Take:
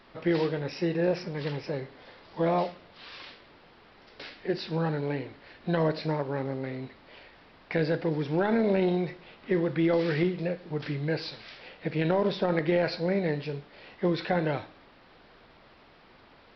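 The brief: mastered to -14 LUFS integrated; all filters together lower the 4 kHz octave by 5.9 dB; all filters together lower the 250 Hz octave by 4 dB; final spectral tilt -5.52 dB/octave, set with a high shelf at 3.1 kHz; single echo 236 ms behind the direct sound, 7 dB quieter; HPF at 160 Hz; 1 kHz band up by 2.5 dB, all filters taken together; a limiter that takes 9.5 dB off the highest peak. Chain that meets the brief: high-pass 160 Hz; peaking EQ 250 Hz -5.5 dB; peaking EQ 1 kHz +4.5 dB; treble shelf 3.1 kHz -6 dB; peaking EQ 4 kHz -3 dB; peak limiter -22 dBFS; delay 236 ms -7 dB; trim +19 dB

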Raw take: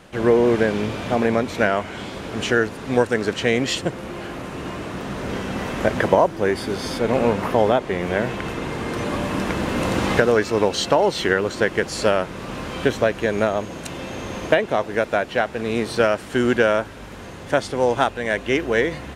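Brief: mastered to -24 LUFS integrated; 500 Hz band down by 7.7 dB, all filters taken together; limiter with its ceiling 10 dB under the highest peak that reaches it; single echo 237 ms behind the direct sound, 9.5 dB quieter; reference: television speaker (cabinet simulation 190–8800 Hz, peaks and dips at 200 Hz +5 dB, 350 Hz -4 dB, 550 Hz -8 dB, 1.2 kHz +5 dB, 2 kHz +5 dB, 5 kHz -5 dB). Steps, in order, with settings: peaking EQ 500 Hz -4.5 dB; peak limiter -13 dBFS; cabinet simulation 190–8800 Hz, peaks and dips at 200 Hz +5 dB, 350 Hz -4 dB, 550 Hz -8 dB, 1.2 kHz +5 dB, 2 kHz +5 dB, 5 kHz -5 dB; delay 237 ms -9.5 dB; trim +2 dB

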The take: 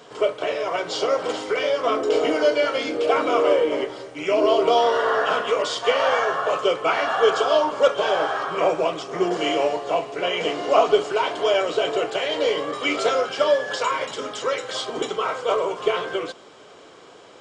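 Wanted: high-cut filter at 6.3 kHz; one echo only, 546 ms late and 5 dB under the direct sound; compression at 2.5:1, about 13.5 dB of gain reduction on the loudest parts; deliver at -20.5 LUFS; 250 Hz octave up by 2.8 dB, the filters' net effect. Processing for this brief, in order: low-pass 6.3 kHz; peaking EQ 250 Hz +4 dB; compression 2.5:1, threshold -33 dBFS; delay 546 ms -5 dB; trim +10 dB

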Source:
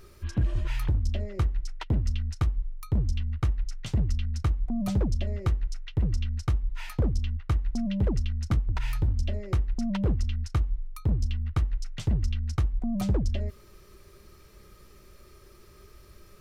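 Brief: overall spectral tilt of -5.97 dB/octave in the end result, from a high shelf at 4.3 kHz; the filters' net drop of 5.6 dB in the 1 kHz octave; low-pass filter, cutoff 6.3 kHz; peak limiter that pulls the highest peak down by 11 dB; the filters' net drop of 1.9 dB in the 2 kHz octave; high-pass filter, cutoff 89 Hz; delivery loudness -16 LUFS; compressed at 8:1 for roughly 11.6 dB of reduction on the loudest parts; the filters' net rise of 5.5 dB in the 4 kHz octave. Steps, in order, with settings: high-pass 89 Hz; low-pass 6.3 kHz; peaking EQ 1 kHz -7 dB; peaking EQ 2 kHz -4.5 dB; peaking EQ 4 kHz +7 dB; treble shelf 4.3 kHz +5.5 dB; compression 8:1, threshold -35 dBFS; trim +27 dB; peak limiter -6.5 dBFS

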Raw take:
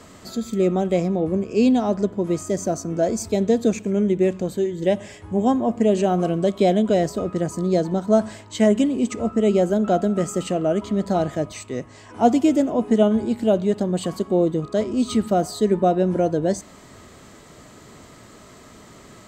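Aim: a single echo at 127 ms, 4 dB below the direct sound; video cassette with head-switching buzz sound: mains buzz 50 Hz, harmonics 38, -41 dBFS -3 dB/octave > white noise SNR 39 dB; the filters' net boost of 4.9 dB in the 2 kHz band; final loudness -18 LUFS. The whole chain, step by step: peaking EQ 2 kHz +6 dB; delay 127 ms -4 dB; mains buzz 50 Hz, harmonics 38, -41 dBFS -3 dB/octave; white noise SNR 39 dB; trim +1.5 dB

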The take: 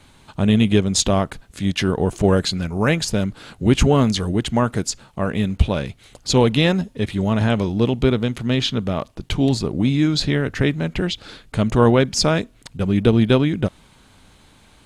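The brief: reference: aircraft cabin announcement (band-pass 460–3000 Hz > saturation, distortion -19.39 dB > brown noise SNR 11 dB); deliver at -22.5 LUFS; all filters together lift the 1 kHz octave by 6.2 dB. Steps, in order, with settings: band-pass 460–3000 Hz; peaking EQ 1 kHz +8 dB; saturation -6 dBFS; brown noise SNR 11 dB; trim +2 dB

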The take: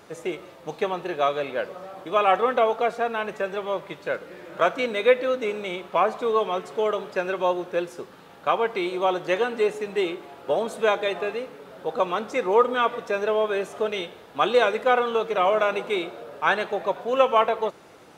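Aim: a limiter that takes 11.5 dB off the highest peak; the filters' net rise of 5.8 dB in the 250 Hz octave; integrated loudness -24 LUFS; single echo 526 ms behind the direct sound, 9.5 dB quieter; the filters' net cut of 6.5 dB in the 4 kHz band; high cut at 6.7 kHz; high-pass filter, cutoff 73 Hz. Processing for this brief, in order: high-pass 73 Hz; low-pass 6.7 kHz; peaking EQ 250 Hz +8.5 dB; peaking EQ 4 kHz -8.5 dB; peak limiter -16.5 dBFS; delay 526 ms -9.5 dB; trim +2.5 dB

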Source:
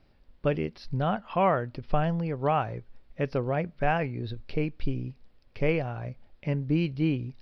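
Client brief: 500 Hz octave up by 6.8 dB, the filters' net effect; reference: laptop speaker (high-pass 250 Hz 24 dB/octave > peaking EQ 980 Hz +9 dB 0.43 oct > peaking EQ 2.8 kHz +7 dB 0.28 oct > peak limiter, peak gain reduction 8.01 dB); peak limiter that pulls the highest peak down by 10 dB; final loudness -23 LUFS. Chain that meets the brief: peaking EQ 500 Hz +7.5 dB; peak limiter -18.5 dBFS; high-pass 250 Hz 24 dB/octave; peaking EQ 980 Hz +9 dB 0.43 oct; peaking EQ 2.8 kHz +7 dB 0.28 oct; trim +10.5 dB; peak limiter -11 dBFS

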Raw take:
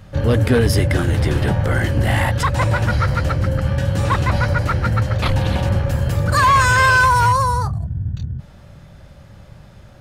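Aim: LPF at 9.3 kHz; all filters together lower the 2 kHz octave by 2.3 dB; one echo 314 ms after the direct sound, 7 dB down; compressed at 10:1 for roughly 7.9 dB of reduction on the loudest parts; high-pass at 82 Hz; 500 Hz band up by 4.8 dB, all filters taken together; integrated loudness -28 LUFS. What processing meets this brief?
high-pass 82 Hz; low-pass 9.3 kHz; peaking EQ 500 Hz +5.5 dB; peaking EQ 2 kHz -4 dB; compression 10:1, threshold -16 dBFS; delay 314 ms -7 dB; trim -7.5 dB

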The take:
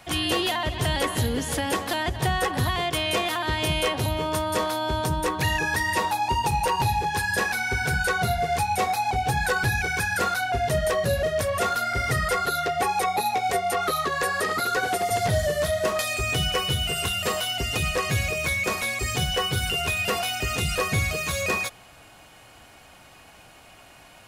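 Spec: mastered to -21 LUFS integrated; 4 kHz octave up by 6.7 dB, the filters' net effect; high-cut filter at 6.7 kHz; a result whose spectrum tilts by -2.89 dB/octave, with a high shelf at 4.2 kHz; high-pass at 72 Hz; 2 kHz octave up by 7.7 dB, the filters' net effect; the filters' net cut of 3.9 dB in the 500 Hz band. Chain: high-pass 72 Hz; low-pass 6.7 kHz; peaking EQ 500 Hz -6 dB; peaking EQ 2 kHz +9 dB; peaking EQ 4 kHz +7.5 dB; treble shelf 4.2 kHz -3.5 dB; trim -1 dB

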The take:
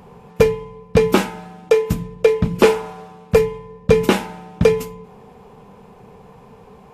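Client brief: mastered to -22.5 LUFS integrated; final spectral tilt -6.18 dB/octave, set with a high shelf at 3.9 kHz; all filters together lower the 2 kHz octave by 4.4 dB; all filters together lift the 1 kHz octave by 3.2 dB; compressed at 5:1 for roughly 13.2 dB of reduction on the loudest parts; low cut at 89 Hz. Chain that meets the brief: high-pass 89 Hz; peaking EQ 1 kHz +5.5 dB; peaking EQ 2 kHz -8.5 dB; treble shelf 3.9 kHz +3.5 dB; compression 5:1, threshold -23 dBFS; trim +7 dB

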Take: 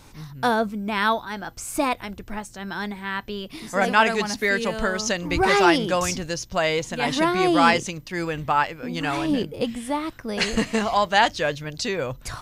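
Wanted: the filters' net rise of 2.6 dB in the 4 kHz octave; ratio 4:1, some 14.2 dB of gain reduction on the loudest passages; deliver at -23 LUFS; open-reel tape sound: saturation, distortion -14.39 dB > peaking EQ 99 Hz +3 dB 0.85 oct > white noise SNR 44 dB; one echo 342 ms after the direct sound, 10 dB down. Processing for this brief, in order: peaking EQ 4 kHz +3.5 dB; compression 4:1, threshold -29 dBFS; delay 342 ms -10 dB; saturation -26 dBFS; peaking EQ 99 Hz +3 dB 0.85 oct; white noise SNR 44 dB; trim +10.5 dB

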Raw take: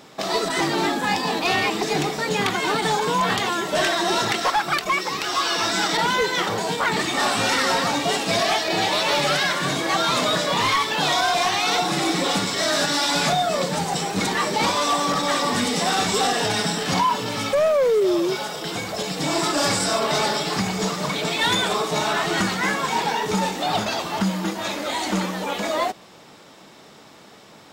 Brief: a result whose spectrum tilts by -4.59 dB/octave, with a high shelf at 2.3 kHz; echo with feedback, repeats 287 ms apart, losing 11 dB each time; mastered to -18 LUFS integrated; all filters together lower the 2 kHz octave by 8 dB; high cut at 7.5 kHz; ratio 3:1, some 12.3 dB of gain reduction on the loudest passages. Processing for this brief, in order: low-pass 7.5 kHz; peaking EQ 2 kHz -6.5 dB; treble shelf 2.3 kHz -7.5 dB; compression 3:1, threshold -35 dBFS; feedback delay 287 ms, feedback 28%, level -11 dB; trim +16 dB

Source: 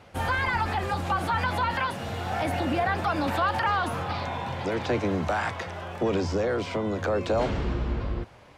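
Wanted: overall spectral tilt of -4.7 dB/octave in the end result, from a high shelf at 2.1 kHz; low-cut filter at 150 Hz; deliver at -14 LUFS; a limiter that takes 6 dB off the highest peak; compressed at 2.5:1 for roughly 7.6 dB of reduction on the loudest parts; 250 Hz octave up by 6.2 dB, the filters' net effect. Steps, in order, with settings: high-pass 150 Hz; peaking EQ 250 Hz +9 dB; treble shelf 2.1 kHz -4 dB; compression 2.5:1, threshold -30 dBFS; trim +19 dB; peak limiter -5 dBFS

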